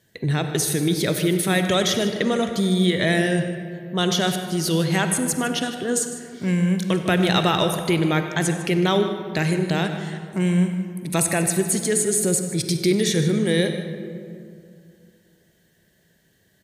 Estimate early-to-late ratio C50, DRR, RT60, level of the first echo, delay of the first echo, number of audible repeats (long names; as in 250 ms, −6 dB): 6.5 dB, 6.0 dB, 2.4 s, −16.5 dB, 96 ms, 2